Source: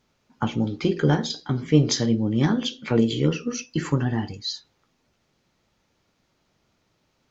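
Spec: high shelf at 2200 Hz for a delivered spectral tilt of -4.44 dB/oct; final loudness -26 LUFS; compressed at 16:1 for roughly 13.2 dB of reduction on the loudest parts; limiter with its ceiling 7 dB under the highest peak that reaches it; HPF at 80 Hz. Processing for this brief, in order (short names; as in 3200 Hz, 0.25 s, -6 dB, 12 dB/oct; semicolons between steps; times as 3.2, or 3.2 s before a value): HPF 80 Hz; high shelf 2200 Hz +5 dB; compressor 16:1, threshold -24 dBFS; gain +5.5 dB; limiter -14.5 dBFS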